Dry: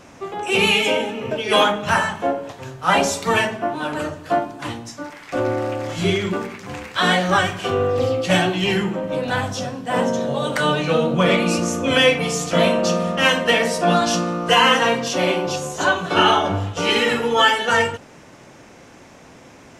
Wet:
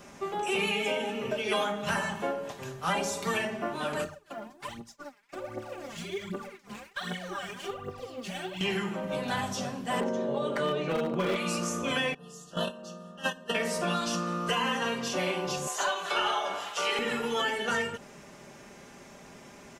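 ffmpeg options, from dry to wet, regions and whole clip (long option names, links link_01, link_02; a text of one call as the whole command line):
ffmpeg -i in.wav -filter_complex "[0:a]asettb=1/sr,asplit=3[link_01][link_02][link_03];[link_01]atrim=end=4.044[link_04];[link_02]atrim=start=4.04:end=8.61,asetpts=PTS-STARTPTS,afade=type=in:duration=0.004:curve=qsin,afade=type=out:start_time=4.566:duration=0.004:curve=qsin,agate=range=-33dB:threshold=-25dB:ratio=3:release=100:detection=peak,acompressor=threshold=-34dB:ratio=5:attack=3.2:release=140:knee=1:detection=peak,aphaser=in_gain=1:out_gain=1:delay=5:decay=0.74:speed=1.3:type=triangular[link_05];[link_03]atrim=start=8.606[link_06];[link_04][link_05]acrossfade=duration=0.004:curve1=hsin:curve2=qsin[link_07];[link_07][link_06]acrossfade=duration=0.004:curve1=qsin:curve2=hsin,asettb=1/sr,asplit=3[link_08][link_09][link_10];[link_08]atrim=end=10.004[link_11];[link_09]atrim=start=10:end=11.36,asetpts=PTS-STARTPTS,afade=type=in:duration=0.004:curve=qsin,afade=type=out:start_time=1.356:duration=0.004:curve=qsin,lowpass=frequency=1200:poles=1,equalizer=frequency=360:width_type=o:width=0.99:gain=12,asoftclip=type=hard:threshold=-7.5dB[link_12];[link_10]atrim=start=11.356[link_13];[link_11][link_12]acrossfade=duration=0.004:curve1=hsin:curve2=qsin[link_14];[link_14][link_13]acrossfade=duration=0.004:curve1=qsin:curve2=hsin,asettb=1/sr,asplit=3[link_15][link_16][link_17];[link_15]atrim=end=12.144[link_18];[link_16]atrim=start=12.14:end=13.55,asetpts=PTS-STARTPTS,afade=type=in:duration=0.004:curve=qsin,afade=type=out:start_time=1.406:duration=0.004:curve=qsin,agate=range=-20dB:threshold=-15dB:ratio=16:release=100:detection=peak,asuperstop=centerf=2200:order=12:qfactor=2.9[link_19];[link_17]atrim=start=13.546[link_20];[link_18][link_19]acrossfade=duration=0.004:curve1=hsin:curve2=qsin[link_21];[link_21][link_20]acrossfade=duration=0.004:curve1=qsin:curve2=hsin,asettb=1/sr,asplit=3[link_22][link_23][link_24];[link_22]atrim=end=15.674[link_25];[link_23]atrim=start=15.67:end=16.99,asetpts=PTS-STARTPTS,afade=type=in:duration=0.004:curve=qsin,afade=type=out:start_time=1.316:duration=0.004:curve=qsin,highpass=900,acontrast=42[link_26];[link_24]atrim=start=16.986[link_27];[link_25][link_26]acrossfade=duration=0.004:curve1=hsin:curve2=qsin[link_28];[link_28][link_27]acrossfade=duration=0.004:curve1=qsin:curve2=hsin,aecho=1:1:5:0.53,acrossover=split=700|2000[link_29][link_30][link_31];[link_29]acompressor=threshold=-26dB:ratio=4[link_32];[link_30]acompressor=threshold=-28dB:ratio=4[link_33];[link_31]acompressor=threshold=-31dB:ratio=4[link_34];[link_32][link_33][link_34]amix=inputs=3:normalize=0,highshelf=frequency=9400:gain=7.5,volume=-6dB" out.wav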